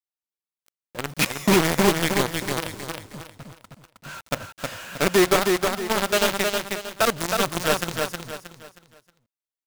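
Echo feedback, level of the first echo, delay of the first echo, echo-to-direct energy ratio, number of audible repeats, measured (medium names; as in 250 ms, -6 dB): 34%, -4.0 dB, 315 ms, -3.5 dB, 4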